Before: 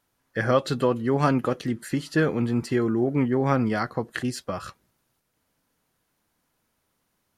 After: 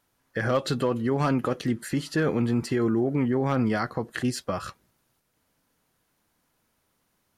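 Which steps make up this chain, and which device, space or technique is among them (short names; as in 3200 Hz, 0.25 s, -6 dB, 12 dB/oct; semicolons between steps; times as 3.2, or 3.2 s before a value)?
clipper into limiter (hard clip -12.5 dBFS, distortion -26 dB; limiter -17.5 dBFS, peak gain reduction 5 dB); gain +1.5 dB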